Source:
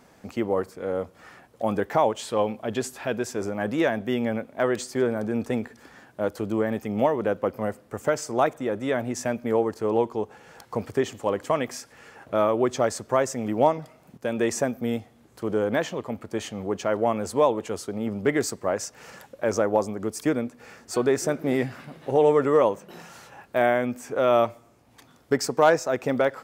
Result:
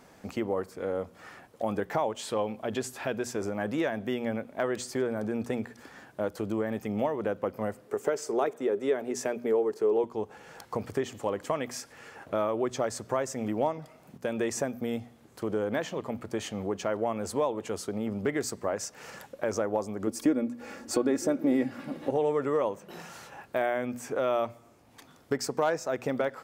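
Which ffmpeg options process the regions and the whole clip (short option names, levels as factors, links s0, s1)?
-filter_complex "[0:a]asettb=1/sr,asplit=3[s0][s1][s2];[s0]atrim=end=7.854[s3];[s1]atrim=start=7.85:end=10.04,asetpts=PTS-STARTPTS,afade=t=in:d=0.004:c=qsin,afade=t=out:st=2.186:d=0.004:c=qsin,highpass=200,equalizer=f=410:w=5.1:g=14.5[s4];[s2]atrim=start=10.036[s5];[s3][s4]acrossfade=d=0.004:c1=hsin:c2=qsin[s6];[s6][s5]acrossfade=d=0.004:c1=qsin:c2=hsin,asettb=1/sr,asplit=3[s7][s8][s9];[s7]atrim=end=20.074[s10];[s8]atrim=start=20.07:end=22.11,asetpts=PTS-STARTPTS,afade=t=in:d=0.004:c=qsin,afade=t=out:st=2.036:d=0.004:c=qsin,equalizer=f=300:w=0.68:g=8,aecho=1:1:3.6:0.53,atrim=end_sample=89964[s11];[s9]atrim=start=22.106[s12];[s10][s11]acrossfade=d=0.004:c1=hsin:c2=qsin[s13];[s13][s12]acrossfade=d=0.004:c1=qsin:c2=hsin,bandreject=f=60:t=h:w=6,bandreject=f=120:t=h:w=6,bandreject=f=180:t=h:w=6,bandreject=f=240:t=h:w=6,acompressor=threshold=0.0316:ratio=2"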